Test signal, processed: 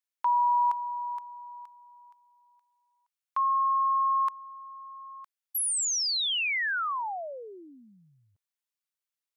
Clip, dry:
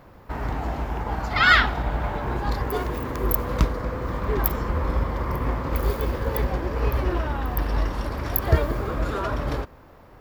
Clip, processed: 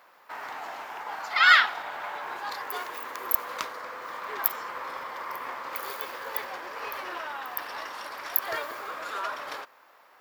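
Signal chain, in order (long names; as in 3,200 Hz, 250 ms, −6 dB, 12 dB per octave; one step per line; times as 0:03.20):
high-pass filter 1,000 Hz 12 dB per octave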